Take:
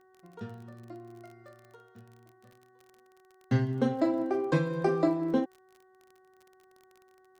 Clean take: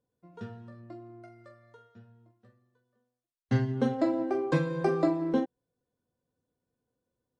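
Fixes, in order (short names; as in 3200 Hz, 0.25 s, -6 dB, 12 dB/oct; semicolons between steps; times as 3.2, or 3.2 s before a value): de-click; de-hum 374.5 Hz, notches 5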